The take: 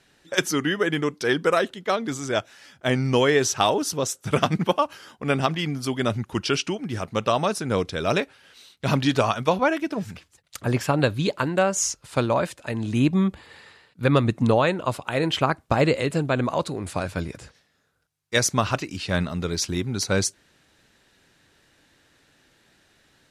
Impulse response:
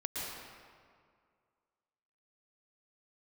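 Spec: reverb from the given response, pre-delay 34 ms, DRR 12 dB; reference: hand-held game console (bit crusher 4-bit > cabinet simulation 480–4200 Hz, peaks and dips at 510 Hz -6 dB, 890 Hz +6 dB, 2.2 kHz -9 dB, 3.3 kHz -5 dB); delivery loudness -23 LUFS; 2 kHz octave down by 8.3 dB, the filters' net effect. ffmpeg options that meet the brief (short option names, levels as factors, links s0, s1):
-filter_complex "[0:a]equalizer=f=2000:t=o:g=-8.5,asplit=2[s0][s1];[1:a]atrim=start_sample=2205,adelay=34[s2];[s1][s2]afir=irnorm=-1:irlink=0,volume=0.168[s3];[s0][s3]amix=inputs=2:normalize=0,acrusher=bits=3:mix=0:aa=0.000001,highpass=480,equalizer=f=510:t=q:w=4:g=-6,equalizer=f=890:t=q:w=4:g=6,equalizer=f=2200:t=q:w=4:g=-9,equalizer=f=3300:t=q:w=4:g=-5,lowpass=f=4200:w=0.5412,lowpass=f=4200:w=1.3066,volume=1.78"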